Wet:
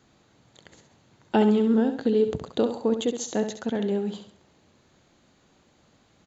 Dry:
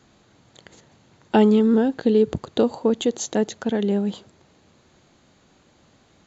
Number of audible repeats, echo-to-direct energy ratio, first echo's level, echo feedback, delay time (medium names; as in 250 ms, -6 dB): 3, -8.0 dB, -8.5 dB, 36%, 67 ms